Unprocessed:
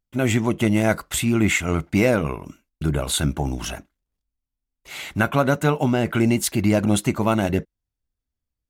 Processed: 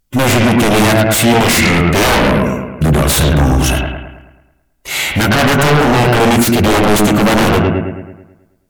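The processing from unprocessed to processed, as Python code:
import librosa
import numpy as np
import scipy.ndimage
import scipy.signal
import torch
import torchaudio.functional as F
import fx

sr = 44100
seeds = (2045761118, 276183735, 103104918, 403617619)

y = fx.high_shelf(x, sr, hz=5900.0, db=6.5)
y = fx.echo_bbd(y, sr, ms=108, stages=2048, feedback_pct=50, wet_db=-5.0)
y = fx.fold_sine(y, sr, drive_db=15, ceiling_db=-4.5)
y = fx.hpss(y, sr, part='percussive', gain_db=-7)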